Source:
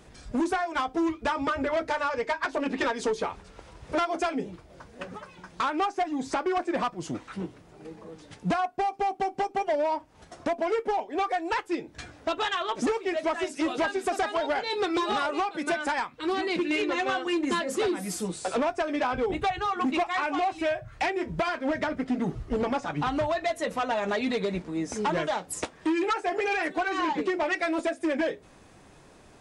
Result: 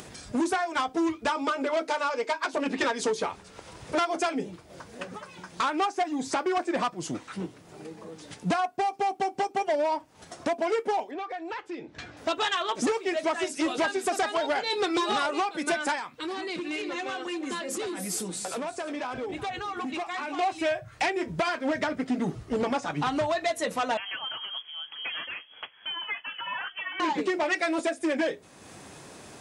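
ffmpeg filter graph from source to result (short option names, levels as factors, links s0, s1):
-filter_complex "[0:a]asettb=1/sr,asplit=3[s0][s1][s2];[s0]atrim=end=1.294[s3];[s1]atrim=start=1.29:end=2.54,asetpts=PTS-STARTPTS,afade=t=in:d=0.004:c=qsin,afade=t=out:st=1.246:d=0.004:c=qsin,highpass=f=230:w=0.5412,highpass=f=230:w=1.3066,equalizer=f=1800:w=6.1:g=-8[s4];[s2]atrim=start=2.536[s5];[s3][s4]acrossfade=d=0.004:c1=hsin:c2=qsin[s6];[s6][s5]acrossfade=d=0.004:c1=qsin:c2=hsin,asettb=1/sr,asplit=3[s7][s8][s9];[s7]atrim=end=11.114[s10];[s8]atrim=start=11.11:end=12.17,asetpts=PTS-STARTPTS,afade=t=in:d=0.004:c=qsin,afade=t=out:st=1.056:d=0.004:c=qsin,lowpass=3900,acompressor=threshold=0.02:ratio=4:attack=3.2:release=140:knee=1:detection=peak[s11];[s9]atrim=start=12.166[s12];[s10][s11]acrossfade=d=0.004:c1=hsin:c2=qsin[s13];[s13][s12]acrossfade=d=0.004:c1=qsin:c2=hsin,asettb=1/sr,asplit=3[s14][s15][s16];[s14]atrim=end=15.954[s17];[s15]atrim=start=15.95:end=20.39,asetpts=PTS-STARTPTS,afade=t=in:d=0.004:c=qsin,afade=t=out:st=4.436:d=0.004:c=qsin,acompressor=threshold=0.0282:ratio=6:attack=3.2:release=140:knee=1:detection=peak,aecho=1:1:353:0.2,atrim=end_sample=195804[s18];[s16]atrim=start=20.386[s19];[s17][s18]acrossfade=d=0.004:c1=hsin:c2=qsin[s20];[s20][s19]acrossfade=d=0.004:c1=qsin:c2=hsin,asettb=1/sr,asplit=3[s21][s22][s23];[s21]atrim=end=23.974[s24];[s22]atrim=start=23.97:end=27,asetpts=PTS-STARTPTS,afade=t=in:d=0.004:c=qsin,afade=t=out:st=3.026:d=0.004:c=qsin,equalizer=f=490:t=o:w=2.7:g=-15,lowpass=f=2900:t=q:w=0.5098,lowpass=f=2900:t=q:w=0.6013,lowpass=f=2900:t=q:w=0.9,lowpass=f=2900:t=q:w=2.563,afreqshift=-3400[s25];[s23]atrim=start=26.996[s26];[s24][s25]acrossfade=d=0.004:c1=hsin:c2=qsin[s27];[s27][s26]acrossfade=d=0.004:c1=qsin:c2=hsin,highpass=96,highshelf=f=4200:g=7.5,acompressor=mode=upward:threshold=0.0126:ratio=2.5"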